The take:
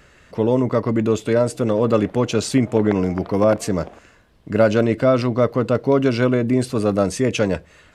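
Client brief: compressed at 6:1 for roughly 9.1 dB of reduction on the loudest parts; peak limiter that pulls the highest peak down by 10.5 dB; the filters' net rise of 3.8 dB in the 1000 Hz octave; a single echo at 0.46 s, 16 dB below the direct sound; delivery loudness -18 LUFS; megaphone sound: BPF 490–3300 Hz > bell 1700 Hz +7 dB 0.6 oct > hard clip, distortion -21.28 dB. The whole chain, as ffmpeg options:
-af "equalizer=f=1k:t=o:g=3.5,acompressor=threshold=-20dB:ratio=6,alimiter=limit=-20.5dB:level=0:latency=1,highpass=490,lowpass=3.3k,equalizer=f=1.7k:t=o:w=0.6:g=7,aecho=1:1:460:0.158,asoftclip=type=hard:threshold=-25.5dB,volume=17.5dB"

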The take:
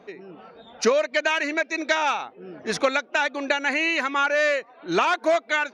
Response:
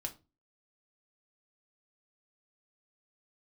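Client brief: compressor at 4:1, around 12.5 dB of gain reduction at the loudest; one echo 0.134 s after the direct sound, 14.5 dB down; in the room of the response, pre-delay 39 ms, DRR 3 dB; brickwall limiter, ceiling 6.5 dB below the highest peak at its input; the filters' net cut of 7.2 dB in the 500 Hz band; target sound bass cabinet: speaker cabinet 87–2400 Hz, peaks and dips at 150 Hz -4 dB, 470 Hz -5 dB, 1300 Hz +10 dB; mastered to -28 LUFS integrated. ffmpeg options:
-filter_complex "[0:a]equalizer=f=500:t=o:g=-8,acompressor=threshold=-35dB:ratio=4,alimiter=level_in=3.5dB:limit=-24dB:level=0:latency=1,volume=-3.5dB,aecho=1:1:134:0.188,asplit=2[a][b];[1:a]atrim=start_sample=2205,adelay=39[c];[b][c]afir=irnorm=-1:irlink=0,volume=-2dB[d];[a][d]amix=inputs=2:normalize=0,highpass=f=87:w=0.5412,highpass=f=87:w=1.3066,equalizer=f=150:t=q:w=4:g=-4,equalizer=f=470:t=q:w=4:g=-5,equalizer=f=1.3k:t=q:w=4:g=10,lowpass=f=2.4k:w=0.5412,lowpass=f=2.4k:w=1.3066,volume=6dB"

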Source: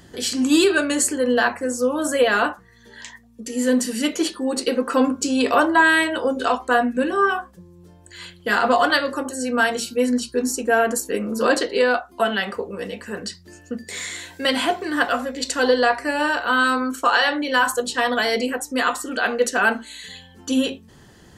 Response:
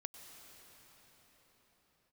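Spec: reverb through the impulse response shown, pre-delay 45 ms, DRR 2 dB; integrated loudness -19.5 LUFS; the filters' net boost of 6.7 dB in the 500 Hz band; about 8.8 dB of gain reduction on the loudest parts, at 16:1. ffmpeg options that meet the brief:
-filter_complex "[0:a]equalizer=f=500:t=o:g=7.5,acompressor=threshold=-14dB:ratio=16,asplit=2[a][b];[1:a]atrim=start_sample=2205,adelay=45[c];[b][c]afir=irnorm=-1:irlink=0,volume=1.5dB[d];[a][d]amix=inputs=2:normalize=0,volume=-0.5dB"

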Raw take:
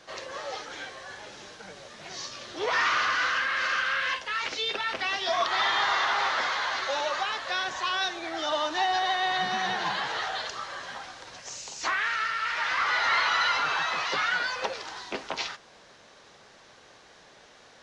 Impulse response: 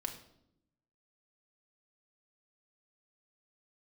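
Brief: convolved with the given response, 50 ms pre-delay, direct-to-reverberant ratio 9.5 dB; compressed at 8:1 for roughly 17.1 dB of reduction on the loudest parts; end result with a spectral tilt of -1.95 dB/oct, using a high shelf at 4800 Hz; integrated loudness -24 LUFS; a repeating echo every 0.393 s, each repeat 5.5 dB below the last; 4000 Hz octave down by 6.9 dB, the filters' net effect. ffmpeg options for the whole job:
-filter_complex "[0:a]equalizer=f=4k:t=o:g=-6.5,highshelf=f=4.8k:g=-5.5,acompressor=threshold=-42dB:ratio=8,aecho=1:1:393|786|1179|1572|1965|2358|2751:0.531|0.281|0.149|0.079|0.0419|0.0222|0.0118,asplit=2[a][b];[1:a]atrim=start_sample=2205,adelay=50[c];[b][c]afir=irnorm=-1:irlink=0,volume=-9dB[d];[a][d]amix=inputs=2:normalize=0,volume=18dB"

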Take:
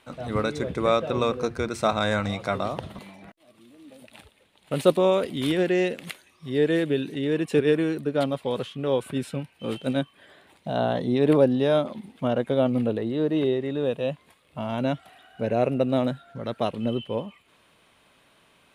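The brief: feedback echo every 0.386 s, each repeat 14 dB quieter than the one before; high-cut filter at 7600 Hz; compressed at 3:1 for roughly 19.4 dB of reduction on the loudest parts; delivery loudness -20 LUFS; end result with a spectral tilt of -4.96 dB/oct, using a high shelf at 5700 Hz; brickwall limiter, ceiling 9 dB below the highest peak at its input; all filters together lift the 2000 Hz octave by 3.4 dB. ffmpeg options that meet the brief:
-af "lowpass=7.6k,equalizer=f=2k:t=o:g=4,highshelf=f=5.7k:g=4,acompressor=threshold=-41dB:ratio=3,alimiter=level_in=7.5dB:limit=-24dB:level=0:latency=1,volume=-7.5dB,aecho=1:1:386|772:0.2|0.0399,volume=23dB"

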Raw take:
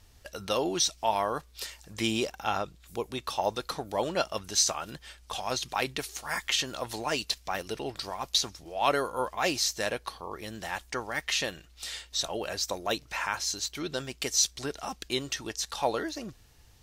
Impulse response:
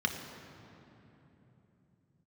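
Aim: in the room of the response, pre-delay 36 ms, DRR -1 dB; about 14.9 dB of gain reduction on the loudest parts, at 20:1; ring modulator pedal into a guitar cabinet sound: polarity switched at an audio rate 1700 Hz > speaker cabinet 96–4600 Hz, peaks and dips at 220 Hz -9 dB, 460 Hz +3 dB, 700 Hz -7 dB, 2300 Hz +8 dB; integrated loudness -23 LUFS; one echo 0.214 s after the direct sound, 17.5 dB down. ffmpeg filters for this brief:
-filter_complex "[0:a]acompressor=threshold=-35dB:ratio=20,aecho=1:1:214:0.133,asplit=2[a][b];[1:a]atrim=start_sample=2205,adelay=36[c];[b][c]afir=irnorm=-1:irlink=0,volume=-6.5dB[d];[a][d]amix=inputs=2:normalize=0,aeval=exprs='val(0)*sgn(sin(2*PI*1700*n/s))':c=same,highpass=96,equalizer=f=220:t=q:w=4:g=-9,equalizer=f=460:t=q:w=4:g=3,equalizer=f=700:t=q:w=4:g=-7,equalizer=f=2.3k:t=q:w=4:g=8,lowpass=f=4.6k:w=0.5412,lowpass=f=4.6k:w=1.3066,volume=11.5dB"

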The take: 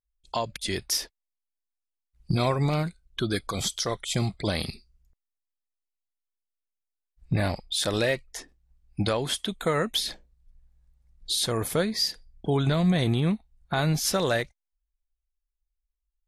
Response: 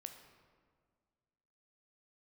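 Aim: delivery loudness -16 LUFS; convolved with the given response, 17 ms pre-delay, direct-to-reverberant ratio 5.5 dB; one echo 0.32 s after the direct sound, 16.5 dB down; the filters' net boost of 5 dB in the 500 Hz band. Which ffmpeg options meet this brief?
-filter_complex "[0:a]equalizer=f=500:t=o:g=6,aecho=1:1:320:0.15,asplit=2[a][b];[1:a]atrim=start_sample=2205,adelay=17[c];[b][c]afir=irnorm=-1:irlink=0,volume=-0.5dB[d];[a][d]amix=inputs=2:normalize=0,volume=8dB"

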